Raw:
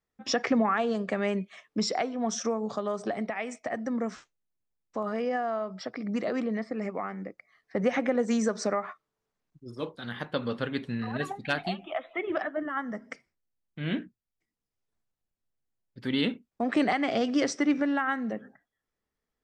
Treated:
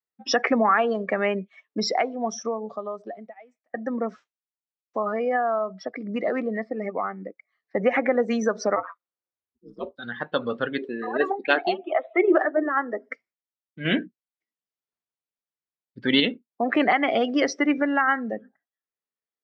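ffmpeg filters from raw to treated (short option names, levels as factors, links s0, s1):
-filter_complex "[0:a]asplit=3[s0][s1][s2];[s0]afade=t=out:st=8.75:d=0.02[s3];[s1]aeval=exprs='val(0)*sin(2*PI*87*n/s)':c=same,afade=t=in:st=8.75:d=0.02,afade=t=out:st=9.97:d=0.02[s4];[s2]afade=t=in:st=9.97:d=0.02[s5];[s3][s4][s5]amix=inputs=3:normalize=0,asettb=1/sr,asplit=3[s6][s7][s8];[s6]atrim=end=10.784[s9];[s7]atrim=start=10.78:end=13.09,asetpts=PTS-STARTPTS,afade=t=in:d=0.004:c=qsin,afade=t=out:st=2.306:d=0.004:c=qsin,highpass=f=360:t=q:w=3.5[s10];[s8]atrim=start=13.086[s11];[s9][s10]acrossfade=d=0.004:c1=hsin:c2=qsin[s12];[s12][s11]acrossfade=d=0.004:c1=qsin:c2=hsin,asplit=4[s13][s14][s15][s16];[s13]atrim=end=3.74,asetpts=PTS-STARTPTS,afade=t=out:st=1.9:d=1.84[s17];[s14]atrim=start=3.74:end=13.852,asetpts=PTS-STARTPTS,afade=t=in:d=0.004:c=hsin[s18];[s15]atrim=start=13.848:end=16.202,asetpts=PTS-STARTPTS,volume=1.78[s19];[s16]atrim=start=16.198[s20];[s17][s18]concat=n=2:v=0:a=1[s21];[s21][s19]acrossfade=d=0.004:c1=hsin:c2=hsin[s22];[s22][s20]acrossfade=d=0.004:c1=hsin:c2=hsin,lowpass=5100,afftdn=nr=19:nf=-37,highpass=f=510:p=1,volume=2.66"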